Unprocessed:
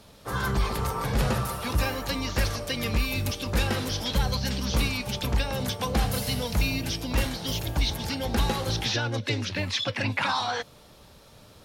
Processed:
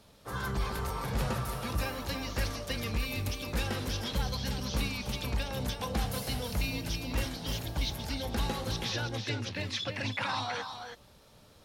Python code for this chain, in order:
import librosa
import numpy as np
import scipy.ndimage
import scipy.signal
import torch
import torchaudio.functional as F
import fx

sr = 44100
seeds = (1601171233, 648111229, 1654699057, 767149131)

y = x + 10.0 ** (-7.5 / 20.0) * np.pad(x, (int(326 * sr / 1000.0), 0))[:len(x)]
y = y * 10.0 ** (-7.0 / 20.0)